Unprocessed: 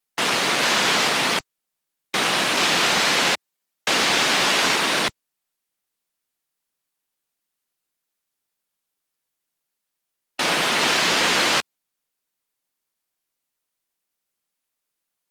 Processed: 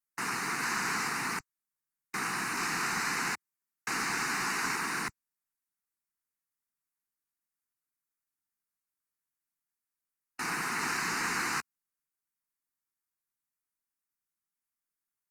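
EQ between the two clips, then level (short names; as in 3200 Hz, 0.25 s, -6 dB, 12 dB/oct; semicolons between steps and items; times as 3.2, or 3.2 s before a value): fixed phaser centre 1400 Hz, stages 4; -8.5 dB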